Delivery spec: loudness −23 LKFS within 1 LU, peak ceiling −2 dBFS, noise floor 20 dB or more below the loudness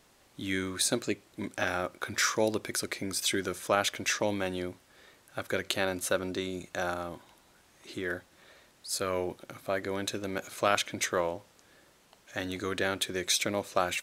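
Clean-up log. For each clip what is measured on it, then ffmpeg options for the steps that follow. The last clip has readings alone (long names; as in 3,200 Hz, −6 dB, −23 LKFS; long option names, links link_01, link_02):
integrated loudness −31.5 LKFS; sample peak −8.5 dBFS; target loudness −23.0 LKFS
→ -af "volume=8.5dB,alimiter=limit=-2dB:level=0:latency=1"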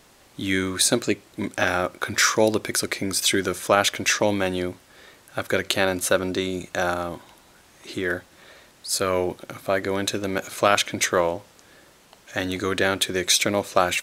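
integrated loudness −23.0 LKFS; sample peak −2.0 dBFS; background noise floor −55 dBFS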